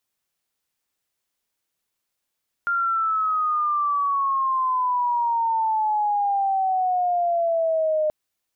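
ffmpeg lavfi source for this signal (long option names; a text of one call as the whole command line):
ffmpeg -f lavfi -i "aevalsrc='pow(10,(-19.5+1*t/5.43)/20)*sin(2*PI*1400*5.43/log(610/1400)*(exp(log(610/1400)*t/5.43)-1))':duration=5.43:sample_rate=44100" out.wav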